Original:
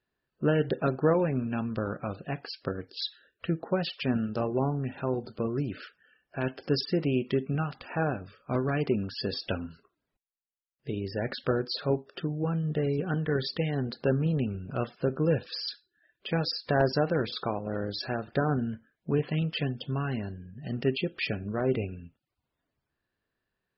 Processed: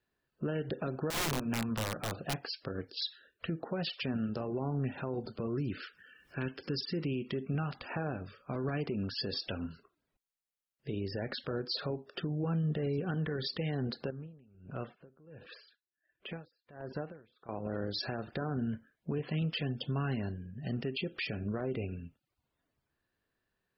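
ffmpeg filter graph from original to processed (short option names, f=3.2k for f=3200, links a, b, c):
-filter_complex "[0:a]asettb=1/sr,asplit=3[a][b][c];[a]atrim=end=1.104[d];[b]atrim=start=1.1:end=2.38,asetpts=PTS-STARTPTS,afade=t=in:d=0.004:c=qsin,afade=t=out:st=1.276:d=0.004:c=qsin,equalizer=f=880:t=o:w=1.1:g=6.5,bandreject=f=60:t=h:w=6,bandreject=f=120:t=h:w=6,bandreject=f=180:t=h:w=6,bandreject=f=240:t=h:w=6,aeval=exprs='(mod(14.1*val(0)+1,2)-1)/14.1':c=same[e];[c]atrim=start=2.376[f];[d][e]acrossfade=d=0.004:c1=hsin:c2=qsin[g];[g][f]acrossfade=d=0.004:c1=qsin:c2=hsin,asettb=1/sr,asplit=3[h][i][j];[h]atrim=end=5.564[k];[i]atrim=start=5.56:end=7.3,asetpts=PTS-STARTPTS,afade=t=in:d=0.004:c=qsin,afade=t=out:st=1.736:d=0.004:c=qsin,equalizer=f=690:t=o:w=0.65:g=-12.5,acompressor=mode=upward:threshold=-48dB:ratio=2.5:attack=3.2:release=140:knee=2.83:detection=peak[l];[j]atrim=start=7.296[m];[k][l]acrossfade=d=0.004:c1=hsin:c2=qsin[n];[n][m]acrossfade=d=0.004:c1=qsin:c2=hsin,asettb=1/sr,asplit=3[o][p][q];[o]atrim=end=14.104[r];[p]atrim=start=14.1:end=17.49,asetpts=PTS-STARTPTS,afade=t=in:d=0.004:c=qsin,afade=t=out:st=3.386:d=0.004:c=qsin,acompressor=threshold=-36dB:ratio=3:attack=3.2:release=140:knee=1:detection=peak,lowpass=f=2.9k:w=0.5412,lowpass=f=2.9k:w=1.3066,aeval=exprs='val(0)*pow(10,-25*(0.5-0.5*cos(2*PI*1.4*n/s))/20)':c=same[s];[q]atrim=start=17.486[t];[r][s]acrossfade=d=0.004:c1=hsin:c2=qsin[u];[u][t]acrossfade=d=0.004:c1=qsin:c2=hsin,acompressor=threshold=-28dB:ratio=3,alimiter=level_in=2dB:limit=-24dB:level=0:latency=1:release=85,volume=-2dB,acrossover=split=470|3000[v][w][x];[w]acompressor=threshold=-38dB:ratio=2[y];[v][y][x]amix=inputs=3:normalize=0"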